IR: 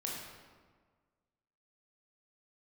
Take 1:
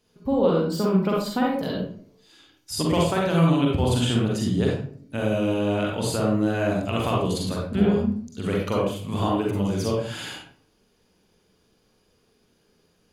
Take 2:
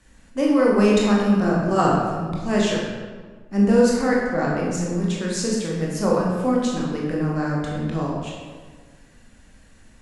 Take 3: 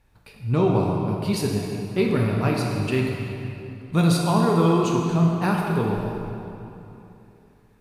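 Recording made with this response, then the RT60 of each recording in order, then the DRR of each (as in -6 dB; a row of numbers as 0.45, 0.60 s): 2; 0.55, 1.6, 3.0 s; -3.0, -3.5, -1.5 dB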